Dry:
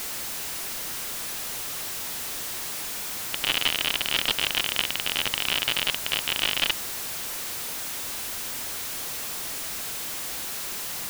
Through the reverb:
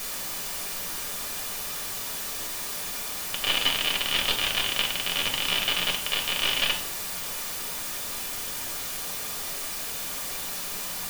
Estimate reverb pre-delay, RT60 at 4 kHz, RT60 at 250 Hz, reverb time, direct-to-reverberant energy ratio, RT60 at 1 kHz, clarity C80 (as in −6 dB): 4 ms, 0.40 s, 0.80 s, 0.55 s, 0.0 dB, 0.55 s, 13.0 dB